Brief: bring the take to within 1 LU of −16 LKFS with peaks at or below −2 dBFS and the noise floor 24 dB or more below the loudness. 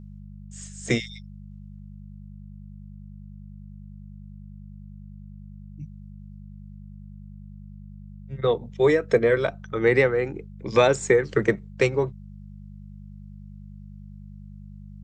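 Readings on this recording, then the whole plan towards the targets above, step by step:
mains hum 50 Hz; hum harmonics up to 200 Hz; level of the hum −40 dBFS; integrated loudness −23.0 LKFS; sample peak −6.0 dBFS; target loudness −16.0 LKFS
→ hum removal 50 Hz, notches 4
level +7 dB
brickwall limiter −2 dBFS

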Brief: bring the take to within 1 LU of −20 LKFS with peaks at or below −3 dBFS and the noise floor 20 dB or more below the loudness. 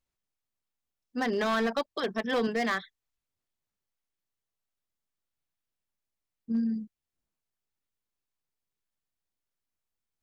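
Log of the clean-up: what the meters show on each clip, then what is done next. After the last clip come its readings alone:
share of clipped samples 0.7%; peaks flattened at −22.5 dBFS; integrated loudness −30.5 LKFS; sample peak −22.5 dBFS; target loudness −20.0 LKFS
→ clipped peaks rebuilt −22.5 dBFS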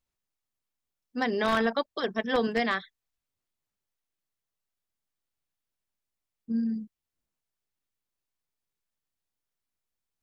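share of clipped samples 0.0%; integrated loudness −29.0 LKFS; sample peak −13.5 dBFS; target loudness −20.0 LKFS
→ level +9 dB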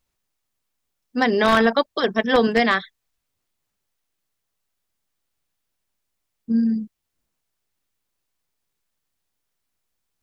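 integrated loudness −20.0 LKFS; sample peak −4.5 dBFS; background noise floor −79 dBFS

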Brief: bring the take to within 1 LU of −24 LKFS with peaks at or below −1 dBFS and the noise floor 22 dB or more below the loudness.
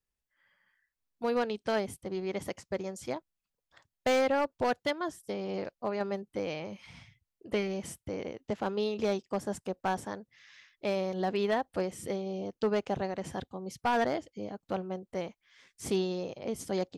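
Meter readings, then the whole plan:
share of clipped samples 0.6%; peaks flattened at −22.0 dBFS; integrated loudness −33.5 LKFS; sample peak −22.0 dBFS; target loudness −24.0 LKFS
→ clipped peaks rebuilt −22 dBFS
level +9.5 dB

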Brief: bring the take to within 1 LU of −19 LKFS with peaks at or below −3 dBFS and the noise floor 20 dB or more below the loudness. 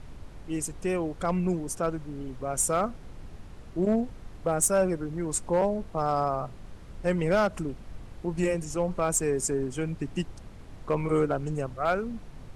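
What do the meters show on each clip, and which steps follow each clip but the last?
share of clipped samples 0.3%; peaks flattened at −16.5 dBFS; background noise floor −46 dBFS; target noise floor −49 dBFS; integrated loudness −29.0 LKFS; sample peak −16.5 dBFS; target loudness −19.0 LKFS
→ clipped peaks rebuilt −16.5 dBFS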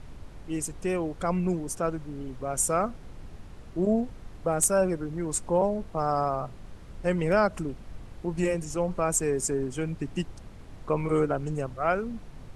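share of clipped samples 0.0%; background noise floor −46 dBFS; target noise floor −49 dBFS
→ noise reduction from a noise print 6 dB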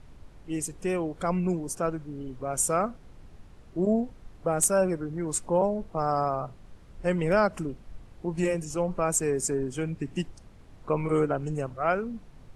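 background noise floor −51 dBFS; integrated loudness −28.5 LKFS; sample peak −10.0 dBFS; target loudness −19.0 LKFS
→ level +9.5 dB
brickwall limiter −3 dBFS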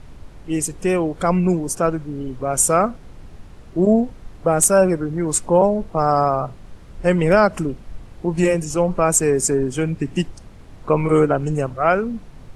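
integrated loudness −19.0 LKFS; sample peak −3.0 dBFS; background noise floor −42 dBFS

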